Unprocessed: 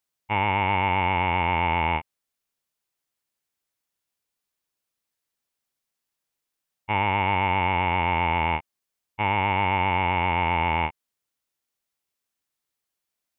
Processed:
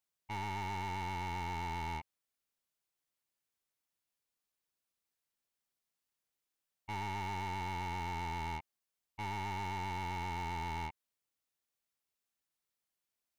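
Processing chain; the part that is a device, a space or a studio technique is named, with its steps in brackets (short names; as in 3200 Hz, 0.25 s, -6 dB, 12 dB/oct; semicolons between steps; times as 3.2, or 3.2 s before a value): saturation between pre-emphasis and de-emphasis (high shelf 2400 Hz +9.5 dB; soft clip -29.5 dBFS, distortion -4 dB; high shelf 2400 Hz -9.5 dB); gain -6 dB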